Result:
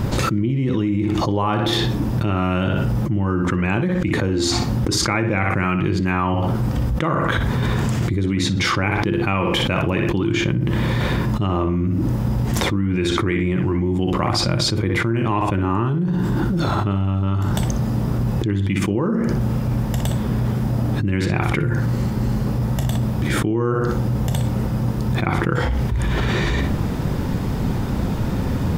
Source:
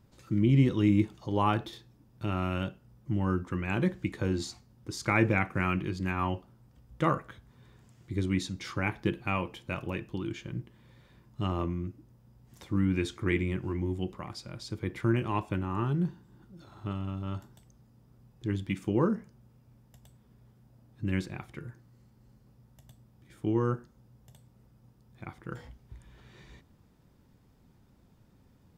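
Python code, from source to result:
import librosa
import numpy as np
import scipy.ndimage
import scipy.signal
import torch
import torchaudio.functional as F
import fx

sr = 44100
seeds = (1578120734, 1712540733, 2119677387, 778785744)

p1 = fx.high_shelf(x, sr, hz=3500.0, db=-6.5)
p2 = p1 + fx.echo_filtered(p1, sr, ms=61, feedback_pct=26, hz=4500.0, wet_db=-9.0, dry=0)
y = fx.env_flatten(p2, sr, amount_pct=100)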